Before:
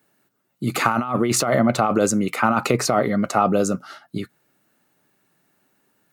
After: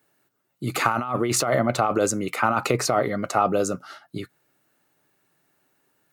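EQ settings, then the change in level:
parametric band 210 Hz −8 dB 0.44 octaves
−2.0 dB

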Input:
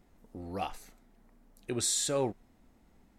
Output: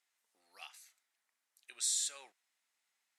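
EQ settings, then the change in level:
flat-topped band-pass 4,900 Hz, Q 0.52
high-shelf EQ 5,800 Hz +5 dB
−6.0 dB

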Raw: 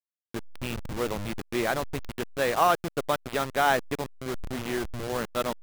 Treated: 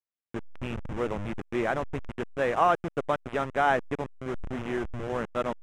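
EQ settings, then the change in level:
high-frequency loss of the air 73 metres
parametric band 4,400 Hz −14.5 dB 0.62 octaves
high-shelf EQ 9,200 Hz −11 dB
0.0 dB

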